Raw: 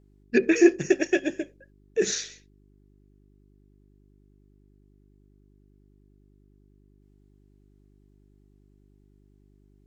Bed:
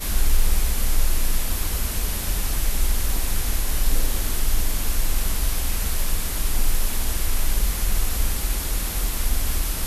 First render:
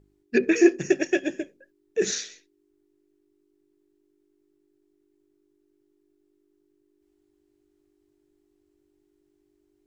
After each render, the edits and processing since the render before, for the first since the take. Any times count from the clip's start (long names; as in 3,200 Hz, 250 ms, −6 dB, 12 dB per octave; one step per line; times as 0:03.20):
hum removal 50 Hz, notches 5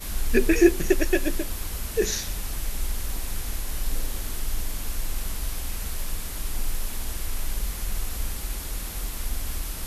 mix in bed −7 dB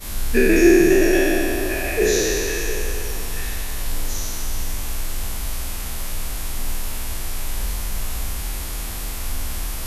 peak hold with a decay on every bin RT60 2.79 s
echo through a band-pass that steps 674 ms, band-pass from 860 Hz, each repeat 1.4 octaves, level −1.5 dB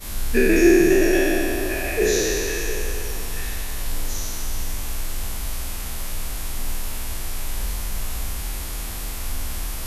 level −1.5 dB